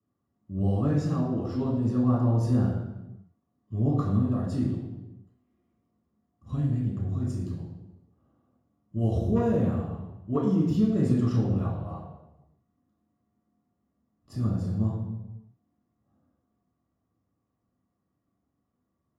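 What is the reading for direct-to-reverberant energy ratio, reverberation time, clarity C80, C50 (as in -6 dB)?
-7.0 dB, 1.0 s, 5.0 dB, 2.5 dB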